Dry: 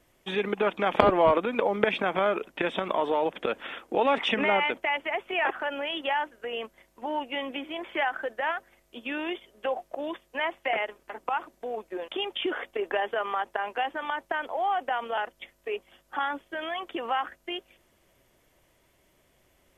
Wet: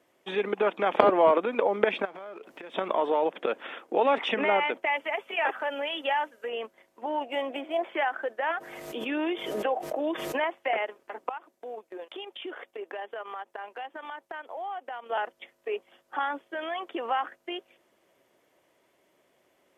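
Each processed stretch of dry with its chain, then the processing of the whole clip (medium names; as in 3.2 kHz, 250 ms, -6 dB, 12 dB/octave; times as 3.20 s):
2.05–2.74 s: companding laws mixed up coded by mu + compression 4:1, threshold -42 dBFS
4.86–6.49 s: treble shelf 3.3 kHz +9 dB + comb of notches 360 Hz
7.21–7.89 s: median filter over 5 samples + peaking EQ 680 Hz +11 dB 0.41 oct
8.50–10.44 s: bass shelf 390 Hz +5 dB + comb 6.4 ms, depth 40% + swell ahead of each attack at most 34 dB/s
11.29–15.11 s: treble shelf 4.3 kHz +7 dB + transient shaper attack -3 dB, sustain -9 dB + compression 2:1, threshold -40 dBFS
whole clip: high-pass 350 Hz 12 dB/octave; tilt EQ -2 dB/octave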